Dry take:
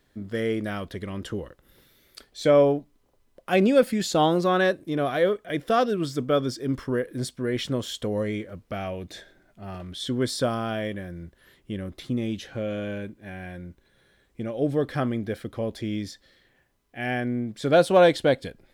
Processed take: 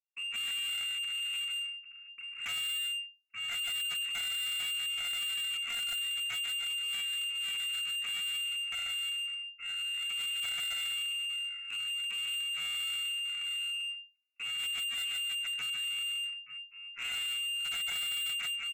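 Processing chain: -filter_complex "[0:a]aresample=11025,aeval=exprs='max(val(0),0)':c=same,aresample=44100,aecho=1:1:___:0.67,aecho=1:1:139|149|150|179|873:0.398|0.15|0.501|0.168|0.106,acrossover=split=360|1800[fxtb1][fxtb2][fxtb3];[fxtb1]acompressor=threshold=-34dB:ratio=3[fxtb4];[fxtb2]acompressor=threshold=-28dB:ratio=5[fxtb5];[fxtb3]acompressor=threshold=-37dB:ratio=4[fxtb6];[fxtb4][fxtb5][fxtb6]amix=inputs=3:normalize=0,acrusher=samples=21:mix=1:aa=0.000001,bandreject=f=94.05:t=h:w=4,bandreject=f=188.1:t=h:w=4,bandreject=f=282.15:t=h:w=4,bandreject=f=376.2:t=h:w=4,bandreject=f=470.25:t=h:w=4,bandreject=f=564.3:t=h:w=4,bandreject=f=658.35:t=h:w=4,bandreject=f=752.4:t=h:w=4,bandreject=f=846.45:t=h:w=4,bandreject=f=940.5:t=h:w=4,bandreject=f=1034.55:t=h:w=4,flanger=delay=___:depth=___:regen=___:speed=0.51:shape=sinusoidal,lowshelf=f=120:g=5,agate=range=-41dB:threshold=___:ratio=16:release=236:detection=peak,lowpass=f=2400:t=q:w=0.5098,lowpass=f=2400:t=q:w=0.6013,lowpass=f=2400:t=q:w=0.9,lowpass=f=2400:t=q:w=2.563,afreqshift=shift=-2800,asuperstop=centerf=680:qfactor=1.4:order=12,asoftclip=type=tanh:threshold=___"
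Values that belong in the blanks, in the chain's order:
1.4, 0.7, 5.6, 48, -45dB, -33.5dB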